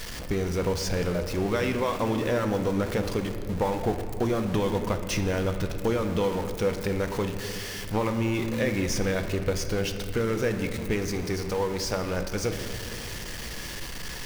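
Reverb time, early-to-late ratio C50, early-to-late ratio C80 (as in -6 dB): 2.5 s, 8.0 dB, 9.0 dB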